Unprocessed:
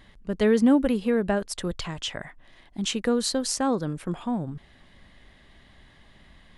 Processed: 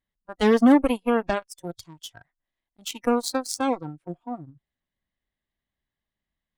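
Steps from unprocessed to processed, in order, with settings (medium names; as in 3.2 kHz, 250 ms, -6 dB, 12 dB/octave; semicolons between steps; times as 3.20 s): Chebyshev shaper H 7 -18 dB, 8 -37 dB, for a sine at -9.5 dBFS; spectral noise reduction 18 dB; trim +3 dB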